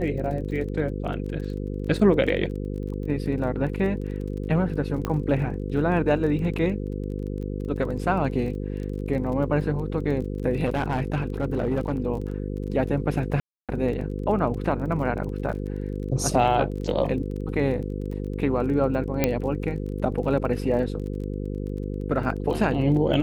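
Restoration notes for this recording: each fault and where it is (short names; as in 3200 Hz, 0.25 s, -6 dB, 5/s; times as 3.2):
buzz 50 Hz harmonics 10 -30 dBFS
crackle 28/s -34 dBFS
5.05 pop -13 dBFS
10.65–12 clipped -19 dBFS
13.4–13.69 gap 0.287 s
19.24 pop -6 dBFS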